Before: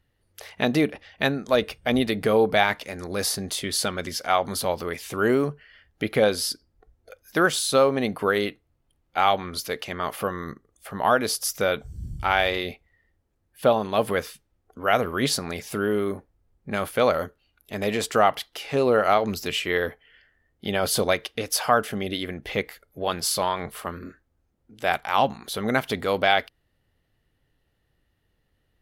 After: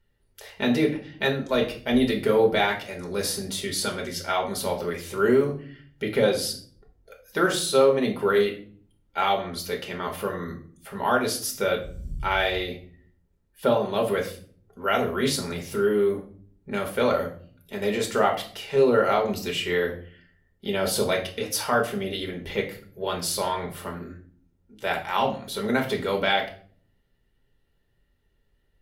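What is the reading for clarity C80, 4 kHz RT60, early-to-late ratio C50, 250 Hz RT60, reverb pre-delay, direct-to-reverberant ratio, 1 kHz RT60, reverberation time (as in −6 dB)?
14.5 dB, 0.35 s, 10.0 dB, 0.85 s, 4 ms, 1.0 dB, 0.40 s, 0.45 s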